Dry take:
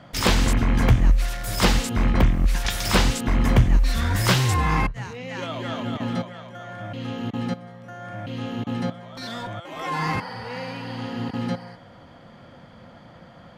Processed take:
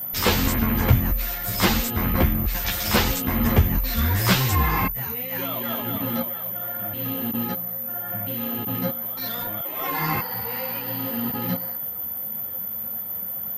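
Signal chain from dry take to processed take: whine 14000 Hz -27 dBFS; ensemble effect; gain +3 dB

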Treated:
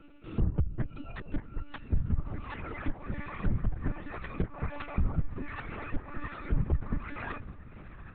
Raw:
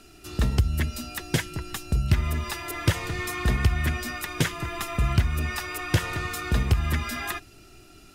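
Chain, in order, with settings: reverb removal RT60 1.3 s; treble ducked by the level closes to 770 Hz, closed at -22 dBFS; low shelf 100 Hz +6.5 dB; limiter -16 dBFS, peak gain reduction 9 dB; air absorption 420 m; diffused feedback echo 0.655 s, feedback 55%, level -15 dB; monotone LPC vocoder at 8 kHz 290 Hz; gain -3 dB

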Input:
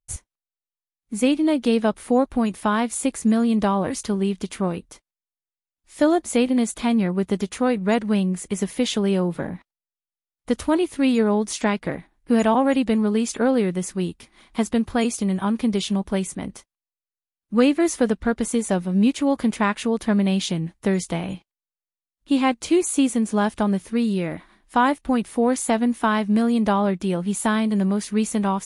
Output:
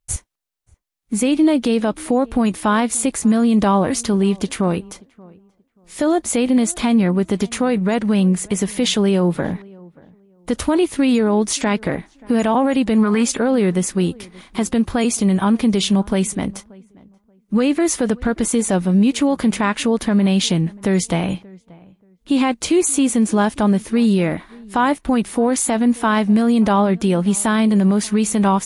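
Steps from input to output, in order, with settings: spectral gain 13.03–13.23, 880–2500 Hz +11 dB; limiter -16 dBFS, peak gain reduction 10.5 dB; darkening echo 0.581 s, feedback 23%, low-pass 1500 Hz, level -24 dB; gain +8 dB

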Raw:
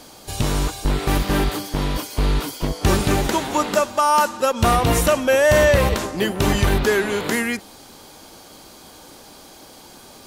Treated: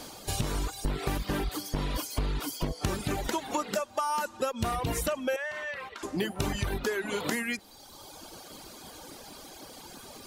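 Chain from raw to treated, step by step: reverb removal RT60 1.3 s; compressor 10:1, threshold -27 dBFS, peak gain reduction 14.5 dB; 5.36–6.03 band-pass 1800 Hz, Q 1.2

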